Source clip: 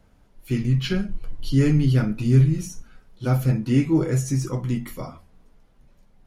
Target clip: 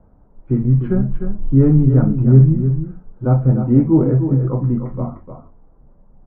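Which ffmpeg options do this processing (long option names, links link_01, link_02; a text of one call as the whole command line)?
ffmpeg -i in.wav -af "lowpass=frequency=1100:width=0.5412,lowpass=frequency=1100:width=1.3066,aecho=1:1:302:0.376,volume=6.5dB" out.wav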